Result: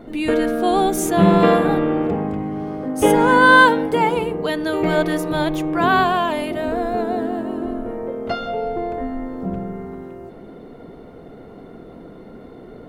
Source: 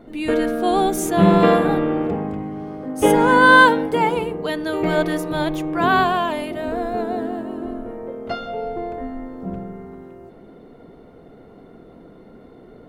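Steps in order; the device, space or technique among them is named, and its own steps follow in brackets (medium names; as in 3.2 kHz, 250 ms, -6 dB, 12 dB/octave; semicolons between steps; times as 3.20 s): parallel compression (in parallel at 0 dB: compression, threshold -28 dBFS, peak gain reduction 19.5 dB); on the sum: trim -1 dB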